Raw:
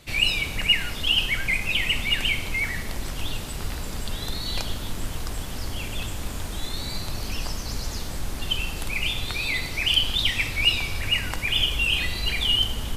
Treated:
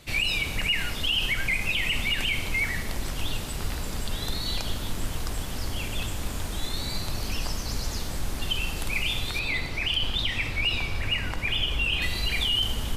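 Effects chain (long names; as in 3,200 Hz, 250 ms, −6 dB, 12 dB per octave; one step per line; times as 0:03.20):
0:09.39–0:12.02: high-shelf EQ 5,000 Hz −11.5 dB
brickwall limiter −16.5 dBFS, peak gain reduction 8 dB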